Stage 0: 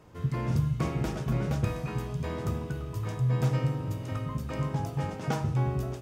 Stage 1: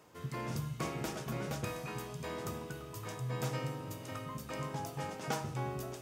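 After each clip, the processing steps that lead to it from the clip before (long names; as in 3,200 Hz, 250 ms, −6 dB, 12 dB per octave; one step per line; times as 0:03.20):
high-pass filter 360 Hz 6 dB per octave
high-shelf EQ 5,100 Hz +7.5 dB
reversed playback
upward compression, threshold −44 dBFS
reversed playback
level −3 dB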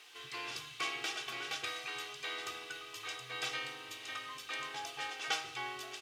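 comb filter 2.6 ms, depth 93%
background noise white −60 dBFS
resonant band-pass 3,000 Hz, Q 1.8
level +10 dB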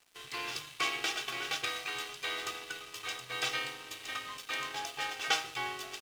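dead-zone distortion −52.5 dBFS
level +6 dB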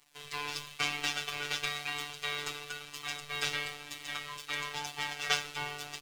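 sub-octave generator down 2 octaves, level 0 dB
phases set to zero 146 Hz
flanger 1 Hz, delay 0.9 ms, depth 1.3 ms, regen −58%
level +7 dB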